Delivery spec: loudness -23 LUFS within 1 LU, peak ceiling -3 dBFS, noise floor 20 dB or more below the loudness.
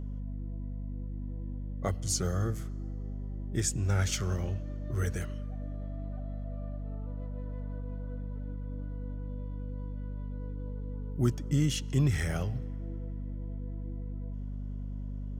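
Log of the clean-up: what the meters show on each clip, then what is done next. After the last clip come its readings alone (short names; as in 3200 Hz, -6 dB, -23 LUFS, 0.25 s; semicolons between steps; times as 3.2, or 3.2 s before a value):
hum 50 Hz; harmonics up to 250 Hz; hum level -34 dBFS; loudness -35.0 LUFS; peak -15.0 dBFS; loudness target -23.0 LUFS
-> notches 50/100/150/200/250 Hz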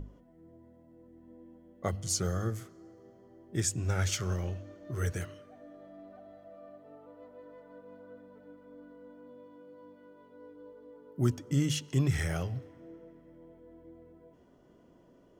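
hum none; loudness -33.0 LUFS; peak -16.0 dBFS; loudness target -23.0 LUFS
-> gain +10 dB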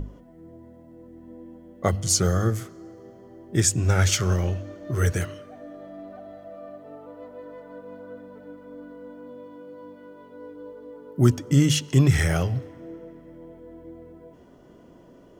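loudness -23.0 LUFS; peak -6.0 dBFS; noise floor -51 dBFS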